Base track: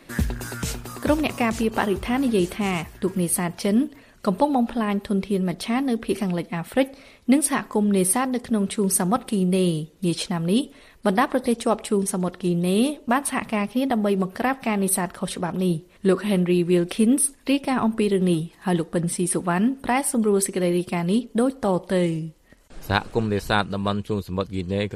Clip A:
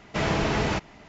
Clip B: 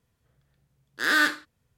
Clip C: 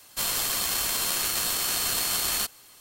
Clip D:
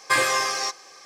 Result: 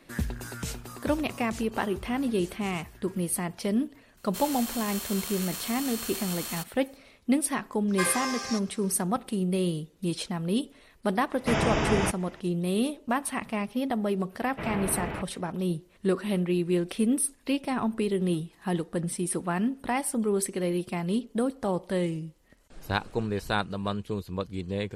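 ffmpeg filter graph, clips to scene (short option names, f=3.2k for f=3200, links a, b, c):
-filter_complex "[1:a]asplit=2[a][b];[0:a]volume=-6.5dB[c];[3:a]equalizer=f=4.8k:t=o:w=0.31:g=-3[d];[a]asuperstop=centerf=4200:order=4:qfactor=4.6[e];[b]lowpass=f=2.8k:w=0.5412,lowpass=f=2.8k:w=1.3066[f];[d]atrim=end=2.8,asetpts=PTS-STARTPTS,volume=-9.5dB,afade=t=in:d=0.004:c=hsin,afade=t=out:st=2.796:d=0.004:c=hsin,adelay=183897S[g];[4:a]atrim=end=1.05,asetpts=PTS-STARTPTS,volume=-9dB,afade=t=in:d=0.004:c=hsin,afade=t=out:st=1.046:d=0.004:c=hsin,adelay=7880[h];[e]atrim=end=1.08,asetpts=PTS-STARTPTS,volume=-1dB,afade=t=in:d=0.004:c=hsin,afade=t=out:st=1.076:d=0.004:c=hsin,adelay=11320[i];[f]atrim=end=1.08,asetpts=PTS-STARTPTS,volume=-8.5dB,afade=t=in:d=0.004:c=hsin,afade=t=out:st=1.076:d=0.004:c=hsin,adelay=14430[j];[c][g][h][i][j]amix=inputs=5:normalize=0"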